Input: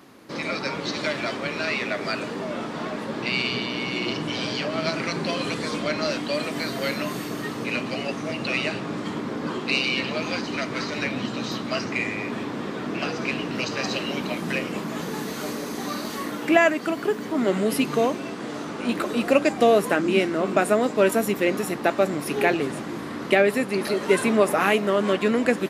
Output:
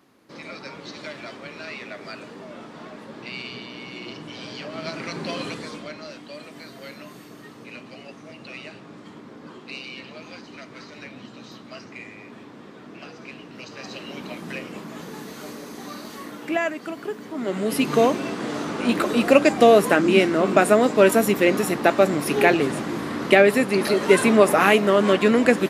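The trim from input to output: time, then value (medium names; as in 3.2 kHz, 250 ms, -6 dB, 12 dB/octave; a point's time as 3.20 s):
4.35 s -9.5 dB
5.40 s -2.5 dB
6.04 s -13 dB
13.52 s -13 dB
14.27 s -6.5 dB
17.36 s -6.5 dB
17.98 s +4 dB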